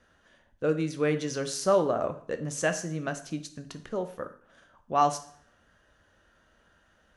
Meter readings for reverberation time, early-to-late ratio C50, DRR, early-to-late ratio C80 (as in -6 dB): 0.60 s, 13.0 dB, 8.5 dB, 16.5 dB